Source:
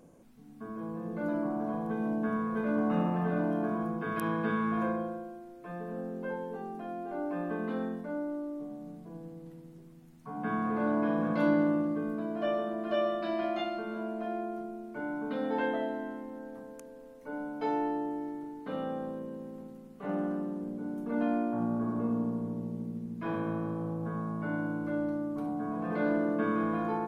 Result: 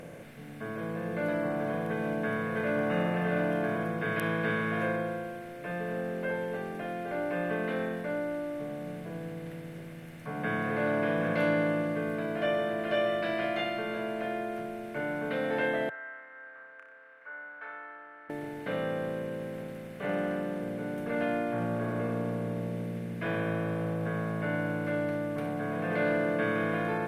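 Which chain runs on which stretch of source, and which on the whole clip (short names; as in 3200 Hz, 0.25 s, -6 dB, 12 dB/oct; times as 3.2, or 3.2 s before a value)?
15.89–18.3 Butterworth band-pass 1400 Hz, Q 3.2 + flutter echo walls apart 5.2 m, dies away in 0.36 s
whole clip: per-bin compression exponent 0.6; graphic EQ 125/250/500/1000/2000 Hz +8/-9/+5/-7/+11 dB; gain -1.5 dB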